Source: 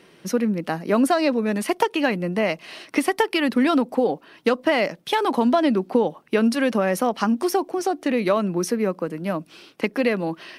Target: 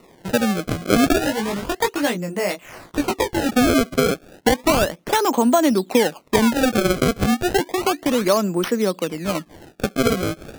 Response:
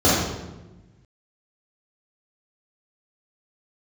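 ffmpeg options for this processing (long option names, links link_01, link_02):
-filter_complex "[0:a]highpass=frequency=120:poles=1,acrusher=samples=27:mix=1:aa=0.000001:lfo=1:lforange=43.2:lforate=0.32,asettb=1/sr,asplit=3[link_01][link_02][link_03];[link_01]atrim=end=1.194[link_04];[link_02]atrim=start=1.19:end=3.49,asetpts=PTS-STARTPTS,afade=type=in:duration=0.004:curve=qsin,afade=type=out:start_time=2.296:duration=0.004:curve=qsin,flanger=delay=17:depth=4.5:speed=1.1[link_05];[link_03]atrim=start=3.486[link_06];[link_04][link_05]acrossfade=duration=0.004:curve1=hsin:curve2=qsin[link_07];[link_07][link_06]acrossfade=duration=0.004:curve1=qsin:curve2=hsin,volume=3dB"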